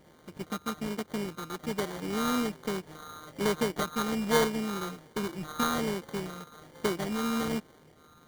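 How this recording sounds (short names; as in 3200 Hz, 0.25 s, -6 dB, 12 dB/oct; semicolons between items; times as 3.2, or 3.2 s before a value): a buzz of ramps at a fixed pitch in blocks of 32 samples; phasing stages 8, 1.2 Hz, lowest notch 730–2000 Hz; aliases and images of a low sample rate 2600 Hz, jitter 0%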